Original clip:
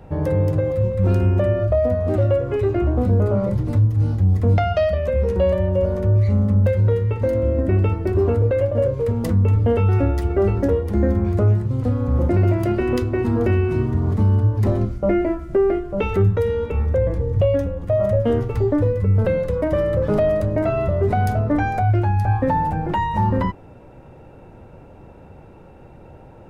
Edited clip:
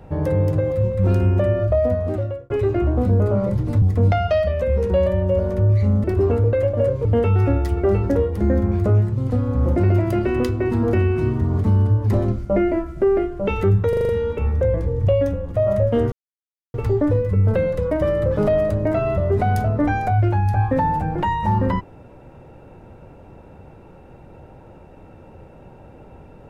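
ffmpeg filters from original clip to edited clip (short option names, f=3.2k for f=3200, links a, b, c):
-filter_complex "[0:a]asplit=11[a][b][c][d][e][f][g][h][i][j][k];[a]atrim=end=2.5,asetpts=PTS-STARTPTS,afade=t=out:st=1.93:d=0.57[l];[b]atrim=start=2.5:end=3.822,asetpts=PTS-STARTPTS,afade=t=in:d=0.004:c=hsin[m];[c]atrim=start=4.278:end=6.502[n];[d]atrim=start=8.018:end=9.032[o];[e]atrim=start=9.578:end=16.462[p];[f]atrim=start=16.418:end=16.462[q];[g]atrim=start=16.418:end=16.462[r];[h]atrim=start=16.418:end=16.462[s];[i]atrim=start=16.418:end=16.462[t];[j]atrim=start=16.418:end=18.45,asetpts=PTS-STARTPTS,afade=t=out:st=2.028:d=0.004:c=hsin,apad=pad_dur=0.62[u];[k]atrim=start=18.45,asetpts=PTS-STARTPTS,afade=t=in:d=0.004:c=hsin[v];[l][m]concat=n=2:v=0:a=1[w];[w][n]acrossfade=d=0.004:c1=hsin:c2=hsin[x];[x][o]acrossfade=d=0.004:c1=hsin:c2=hsin[y];[y][p]acrossfade=d=0.004:c1=hsin:c2=hsin[z];[z][q]acrossfade=d=0.004:c1=hsin:c2=hsin[aa];[aa][r]acrossfade=d=0.004:c1=hsin:c2=hsin[ab];[ab][s]acrossfade=d=0.004:c1=hsin:c2=hsin[ac];[ac][t]acrossfade=d=0.004:c1=hsin:c2=hsin[ad];[u][v]concat=n=2:v=0:a=1[ae];[ad][ae]acrossfade=d=0.004:c1=hsin:c2=hsin"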